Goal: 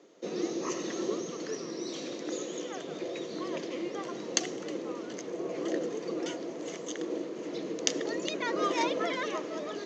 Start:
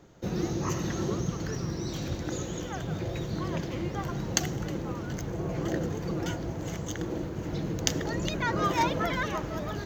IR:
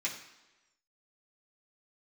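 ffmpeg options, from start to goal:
-af "highpass=f=270:w=0.5412,highpass=f=270:w=1.3066,equalizer=f=460:t=q:w=4:g=4,equalizer=f=840:t=q:w=4:g=-8,equalizer=f=1.5k:t=q:w=4:g=-8,lowpass=f=7.4k:w=0.5412,lowpass=f=7.4k:w=1.3066"

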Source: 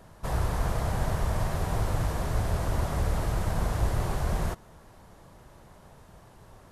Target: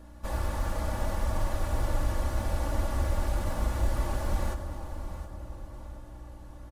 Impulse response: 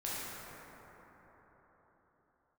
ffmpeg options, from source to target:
-filter_complex "[0:a]acrusher=bits=9:mode=log:mix=0:aa=0.000001,aeval=exprs='val(0)+0.00631*(sin(2*PI*60*n/s)+sin(2*PI*2*60*n/s)/2+sin(2*PI*3*60*n/s)/3+sin(2*PI*4*60*n/s)/4+sin(2*PI*5*60*n/s)/5)':c=same,aecho=1:1:3.5:0.86,aecho=1:1:716|1432|2148|2864:0.224|0.0806|0.029|0.0104,asplit=2[a][b];[1:a]atrim=start_sample=2205,asetrate=30429,aresample=44100[c];[b][c]afir=irnorm=-1:irlink=0,volume=-13dB[d];[a][d]amix=inputs=2:normalize=0,volume=-6.5dB"

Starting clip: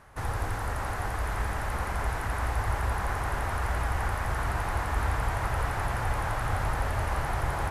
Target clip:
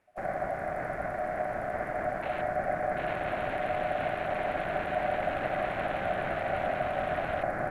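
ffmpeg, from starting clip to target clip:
-af "aeval=exprs='0.168*(cos(1*acos(clip(val(0)/0.168,-1,1)))-cos(1*PI/2))+0.00299*(cos(5*acos(clip(val(0)/0.168,-1,1)))-cos(5*PI/2))':c=same,afwtdn=0.0224,aeval=exprs='val(0)*sin(2*PI*670*n/s)':c=same"

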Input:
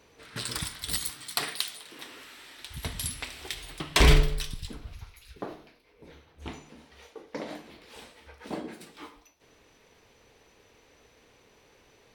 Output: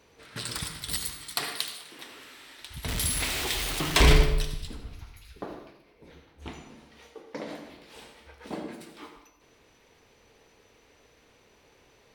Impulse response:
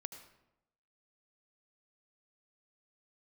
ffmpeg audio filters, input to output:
-filter_complex "[0:a]asettb=1/sr,asplit=3[a][b][c];[a]atrim=end=2.884[d];[b]atrim=start=2.88:end=4.25,asetpts=PTS-STARTPTS,afade=t=in:d=0.004:c=qsin,afade=t=out:st=1.366:d=0.004:c=qsin,aeval=exprs='val(0)+0.5*0.0501*sgn(val(0))':c=same[e];[c]atrim=start=4.246[f];[d][e]acrossfade=d=0.004:c1=hsin:c2=qsin[g];[g][f]acrossfade=d=0.004:c1=qsin:c2=hsin[h];[1:a]atrim=start_sample=2205[i];[h][i]afir=irnorm=-1:irlink=0,volume=3dB"

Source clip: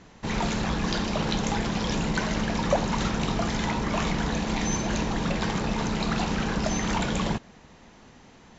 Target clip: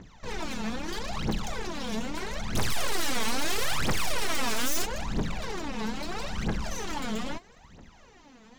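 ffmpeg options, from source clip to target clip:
-filter_complex "[0:a]aeval=exprs='(tanh(31.6*val(0)+0.45)-tanh(0.45))/31.6':c=same,asettb=1/sr,asplit=3[a][b][c];[a]atrim=end=2.554[d];[b]atrim=start=2.55:end=4.85,asetpts=PTS-STARTPTS,afade=t=in:d=0.004:c=qsin,afade=t=out:st=2.296:d=0.004:c=qsin,aeval=exprs='0.0473*sin(PI/2*3.55*val(0)/0.0473)':c=same[e];[c]atrim=start=4.846[f];[d][e]acrossfade=d=0.004:c1=hsin:c2=qsin[g];[g][f]acrossfade=d=0.004:c1=qsin:c2=hsin,aphaser=in_gain=1:out_gain=1:delay=4.7:decay=0.79:speed=0.77:type=triangular,volume=-4.5dB"

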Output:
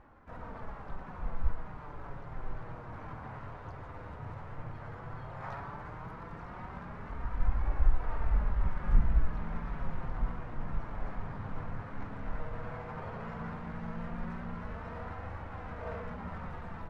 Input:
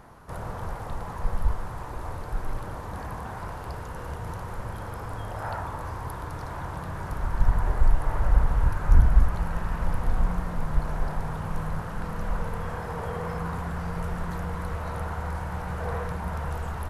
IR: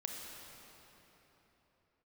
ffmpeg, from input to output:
-filter_complex "[0:a]flanger=delay=3.5:depth=6.7:regen=20:speed=0.13:shape=triangular,adynamicsmooth=sensitivity=4:basefreq=2.3k,asplit=2[a][b];[1:a]atrim=start_sample=2205,adelay=115[c];[b][c]afir=irnorm=-1:irlink=0,volume=-13.5dB[d];[a][d]amix=inputs=2:normalize=0,asplit=2[e][f];[f]asetrate=58866,aresample=44100,atempo=0.749154,volume=-3dB[g];[e][g]amix=inputs=2:normalize=0,volume=-6.5dB"

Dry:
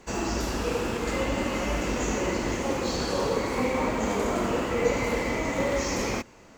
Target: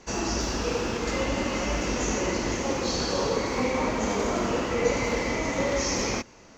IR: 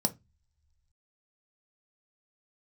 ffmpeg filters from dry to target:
-af "highshelf=f=7.6k:t=q:w=3:g=-9"

